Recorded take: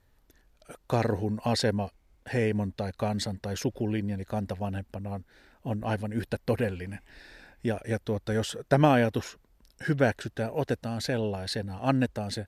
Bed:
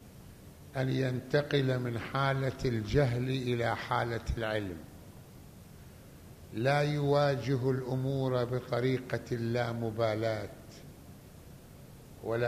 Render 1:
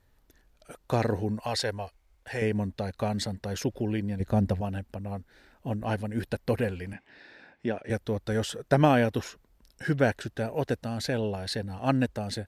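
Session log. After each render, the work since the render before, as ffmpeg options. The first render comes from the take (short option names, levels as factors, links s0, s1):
-filter_complex "[0:a]asettb=1/sr,asplit=3[s0][s1][s2];[s0]atrim=end=1.404[s3];[s1]atrim=start=1.4:end=2.42,asetpts=PTS-STARTPTS,afade=t=in:d=0.004:c=qsin,afade=t=out:st=1.016:d=0.004:c=qsin,equalizer=f=200:w=0.85:g=-14[s4];[s2]atrim=start=2.416[s5];[s3][s4]acrossfade=d=0.004:c1=hsin:c2=qsin[s6];[s6][s5]acrossfade=d=0.004:c1=qsin:c2=hsin,asettb=1/sr,asplit=3[s7][s8][s9];[s7]atrim=end=4.204[s10];[s8]atrim=start=4.2:end=4.61,asetpts=PTS-STARTPTS,afade=t=in:d=0.004:c=qsin,afade=t=out:st=0.406:d=0.004:c=qsin,lowshelf=f=480:g=9[s11];[s9]atrim=start=4.606[s12];[s10][s11]acrossfade=d=0.004:c1=hsin:c2=qsin[s13];[s13][s12]acrossfade=d=0.004:c1=qsin:c2=hsin,asettb=1/sr,asplit=3[s14][s15][s16];[s14]atrim=end=6.934[s17];[s15]atrim=start=6.93:end=7.9,asetpts=PTS-STARTPTS,afade=t=in:d=0.004:c=qsin,afade=t=out:st=0.966:d=0.004:c=qsin,highpass=160,lowpass=3900[s18];[s16]atrim=start=7.896[s19];[s17][s18]acrossfade=d=0.004:c1=hsin:c2=qsin[s20];[s20][s19]acrossfade=d=0.004:c1=qsin:c2=hsin"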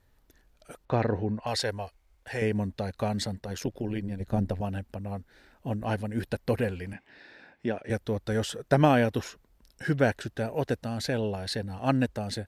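-filter_complex "[0:a]asettb=1/sr,asplit=3[s0][s1][s2];[s0]atrim=end=0.854[s3];[s1]atrim=start=0.85:end=1.47,asetpts=PTS-STARTPTS,afade=t=in:d=0.004:c=qsin,afade=t=out:st=0.616:d=0.004:c=qsin,lowpass=2900[s4];[s2]atrim=start=1.466[s5];[s3][s4]acrossfade=d=0.004:c1=hsin:c2=qsin[s6];[s6][s5]acrossfade=d=0.004:c1=qsin:c2=hsin,asettb=1/sr,asplit=3[s7][s8][s9];[s7]atrim=end=3.404[s10];[s8]atrim=start=3.4:end=4.6,asetpts=PTS-STARTPTS,afade=t=in:d=0.004:c=qsin,afade=t=out:st=1.196:d=0.004:c=qsin,tremolo=f=90:d=0.621[s11];[s9]atrim=start=4.596[s12];[s10][s11]acrossfade=d=0.004:c1=hsin:c2=qsin[s13];[s13][s12]acrossfade=d=0.004:c1=qsin:c2=hsin"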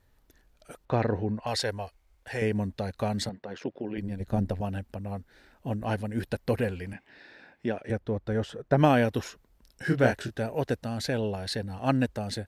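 -filter_complex "[0:a]asettb=1/sr,asplit=3[s0][s1][s2];[s0]atrim=end=3.294[s3];[s1]atrim=start=3.29:end=3.98,asetpts=PTS-STARTPTS,afade=t=in:d=0.004:c=qsin,afade=t=out:st=0.686:d=0.004:c=qsin,highpass=220,lowpass=2800[s4];[s2]atrim=start=3.976[s5];[s3][s4]acrossfade=d=0.004:c1=hsin:c2=qsin[s6];[s6][s5]acrossfade=d=0.004:c1=qsin:c2=hsin,asplit=3[s7][s8][s9];[s7]afade=t=out:st=7.9:d=0.02[s10];[s8]lowpass=f=1400:p=1,afade=t=in:st=7.9:d=0.02,afade=t=out:st=8.77:d=0.02[s11];[s9]afade=t=in:st=8.77:d=0.02[s12];[s10][s11][s12]amix=inputs=3:normalize=0,asettb=1/sr,asplit=3[s13][s14][s15];[s13]atrim=end=9.844[s16];[s14]atrim=start=9.84:end=10.35,asetpts=PTS-STARTPTS,afade=t=in:d=0.004:c=qsin,afade=t=out:st=0.506:d=0.004:c=qsin,asplit=2[s17][s18];[s18]adelay=24,volume=0.596[s19];[s17][s19]amix=inputs=2:normalize=0,atrim=end_sample=22491[s20];[s15]atrim=start=10.346[s21];[s16][s20]acrossfade=d=0.004:c1=hsin:c2=qsin[s22];[s22][s21]acrossfade=d=0.004:c1=qsin:c2=hsin"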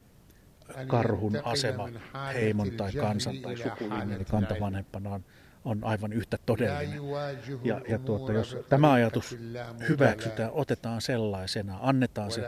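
-filter_complex "[1:a]volume=0.473[s0];[0:a][s0]amix=inputs=2:normalize=0"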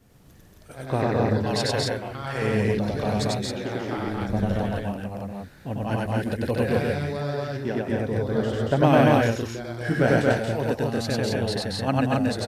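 -af "aecho=1:1:96.21|230.3|265.3:1|0.794|0.794"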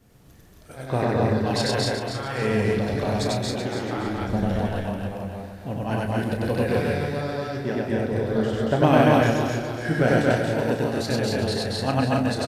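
-filter_complex "[0:a]asplit=2[s0][s1];[s1]adelay=32,volume=0.376[s2];[s0][s2]amix=inputs=2:normalize=0,asplit=2[s3][s4];[s4]aecho=0:1:283|566|849|1132:0.376|0.147|0.0572|0.0223[s5];[s3][s5]amix=inputs=2:normalize=0"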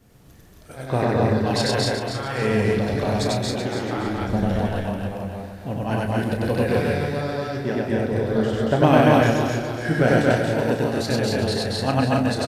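-af "volume=1.26,alimiter=limit=0.708:level=0:latency=1"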